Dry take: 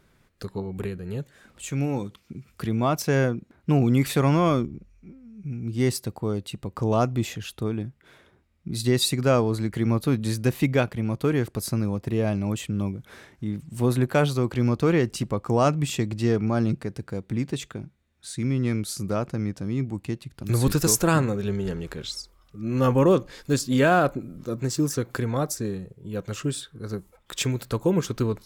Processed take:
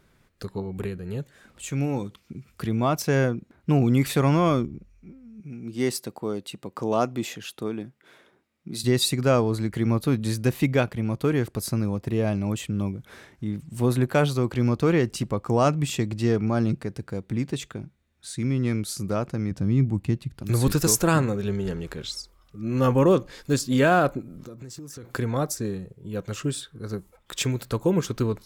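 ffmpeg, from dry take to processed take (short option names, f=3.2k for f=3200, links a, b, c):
-filter_complex "[0:a]asettb=1/sr,asplit=3[a][b][c];[a]atrim=end=5.404[d];[b]atrim=start=5.4:end=8.84,asetpts=PTS-STARTPTS,afade=t=in:d=0.004:c=qsin,afade=t=out:st=3.436:d=0.004:c=qsin,highpass=210[e];[c]atrim=start=8.836[f];[d][e]acrossfade=d=0.004:c1=hsin:c2=qsin[g];[g][f]acrossfade=d=0.004:c1=qsin:c2=hsin,asettb=1/sr,asplit=3[h][i][j];[h]atrim=end=19.514[k];[i]atrim=start=19.51:end=20.38,asetpts=PTS-STARTPTS,afade=t=in:d=0.004:c=qsin,afade=t=out:st=0.866:d=0.004:c=qsin,bass=f=250:g=8,treble=f=4k:g=-2[l];[j]atrim=start=20.376[m];[k][l]acrossfade=d=0.004:c1=hsin:c2=qsin[n];[n][m]acrossfade=d=0.004:c1=qsin:c2=hsin,asplit=3[o][p][q];[o]afade=t=out:st=24.21:d=0.02[r];[p]acompressor=threshold=-36dB:ratio=20:attack=3.2:release=140:knee=1:detection=peak,afade=t=in:st=24.21:d=0.02,afade=t=out:st=25.03:d=0.02[s];[q]afade=t=in:st=25.03:d=0.02[t];[r][s][t]amix=inputs=3:normalize=0"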